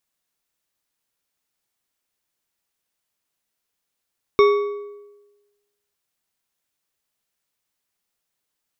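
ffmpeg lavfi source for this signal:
-f lavfi -i "aevalsrc='0.355*pow(10,-3*t/1.16)*sin(2*PI*410*t)+0.168*pow(10,-3*t/0.856)*sin(2*PI*1130.4*t)+0.0794*pow(10,-3*t/0.699)*sin(2*PI*2215.6*t)+0.0376*pow(10,-3*t/0.601)*sin(2*PI*3662.5*t)+0.0178*pow(10,-3*t/0.533)*sin(2*PI*5469.4*t)':d=1.55:s=44100"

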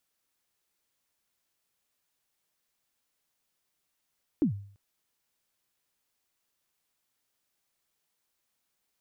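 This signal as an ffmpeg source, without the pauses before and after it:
-f lavfi -i "aevalsrc='0.119*pow(10,-3*t/0.52)*sin(2*PI*(340*0.107/log(100/340)*(exp(log(100/340)*min(t,0.107)/0.107)-1)+100*max(t-0.107,0)))':d=0.34:s=44100"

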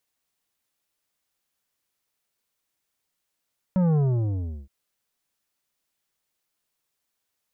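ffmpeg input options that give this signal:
-f lavfi -i "aevalsrc='0.112*clip((0.92-t)/0.72,0,1)*tanh(3.16*sin(2*PI*190*0.92/log(65/190)*(exp(log(65/190)*t/0.92)-1)))/tanh(3.16)':d=0.92:s=44100"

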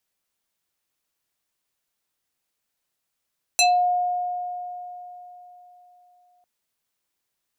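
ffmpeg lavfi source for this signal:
-f lavfi -i "aevalsrc='0.211*pow(10,-3*t/3.74)*sin(2*PI*717*t+3.3*pow(10,-3*t/0.25)*sin(2*PI*4.67*717*t))':d=2.85:s=44100"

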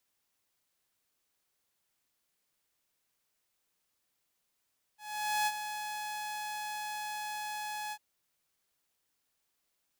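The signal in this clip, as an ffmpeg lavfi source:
-f lavfi -i "aevalsrc='0.0596*(2*mod(845*t,1)-1)':d=2.999:s=44100,afade=t=in:d=0.486,afade=t=out:st=0.486:d=0.045:silence=0.335,afade=t=out:st=2.94:d=0.059"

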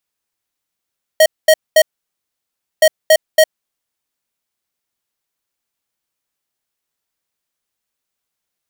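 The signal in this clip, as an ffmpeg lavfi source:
-f lavfi -i "aevalsrc='0.422*(2*lt(mod(629*t,1),0.5)-1)*clip(min(mod(mod(t,1.62),0.28),0.06-mod(mod(t,1.62),0.28))/0.005,0,1)*lt(mod(t,1.62),0.84)':d=3.24:s=44100"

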